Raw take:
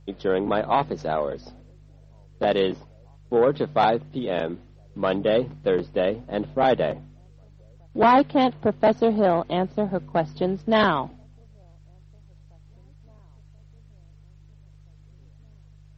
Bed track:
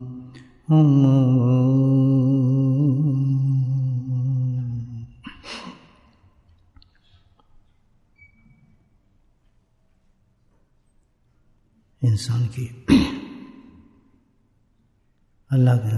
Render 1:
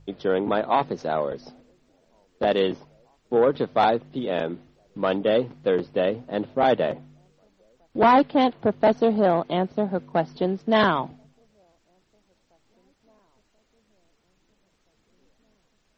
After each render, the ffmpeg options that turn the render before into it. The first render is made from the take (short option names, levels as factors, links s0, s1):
-af "bandreject=f=50:t=h:w=4,bandreject=f=100:t=h:w=4,bandreject=f=150:t=h:w=4"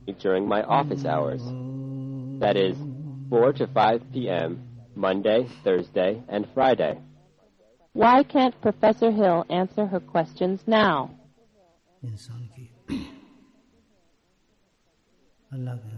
-filter_complex "[1:a]volume=0.158[s0];[0:a][s0]amix=inputs=2:normalize=0"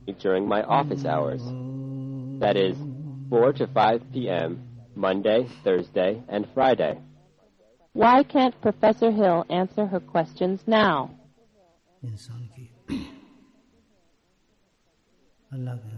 -af anull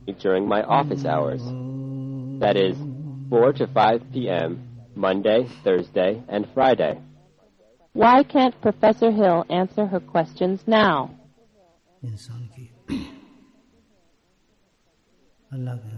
-af "volume=1.33"